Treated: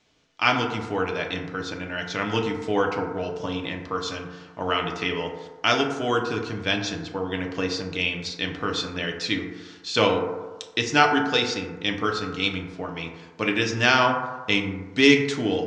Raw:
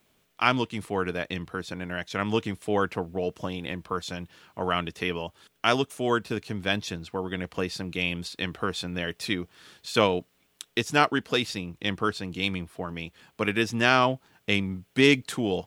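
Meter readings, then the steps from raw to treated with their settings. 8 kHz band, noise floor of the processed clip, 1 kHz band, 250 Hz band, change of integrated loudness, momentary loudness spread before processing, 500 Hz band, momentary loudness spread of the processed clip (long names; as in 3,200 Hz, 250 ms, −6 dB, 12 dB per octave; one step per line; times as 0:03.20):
+3.0 dB, −46 dBFS, +3.0 dB, +2.5 dB, +3.0 dB, 12 LU, +2.5 dB, 13 LU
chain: Butterworth low-pass 6,500 Hz 36 dB per octave
high-shelf EQ 3,100 Hz +8.5 dB
feedback delay network reverb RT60 1.3 s, low-frequency decay 0.8×, high-frequency decay 0.3×, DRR 1.5 dB
level −1 dB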